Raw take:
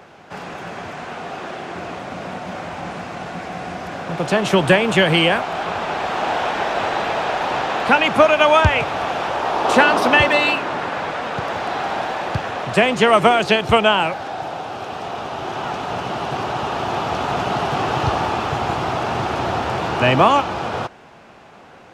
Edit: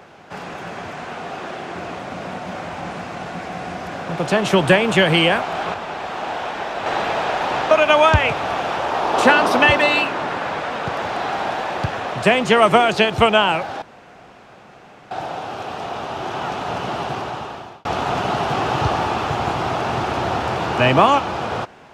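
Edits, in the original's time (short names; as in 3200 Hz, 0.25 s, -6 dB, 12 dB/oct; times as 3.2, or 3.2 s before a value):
5.74–6.86 gain -5 dB
7.71–8.22 cut
14.33 insert room tone 1.29 s
16.21–17.07 fade out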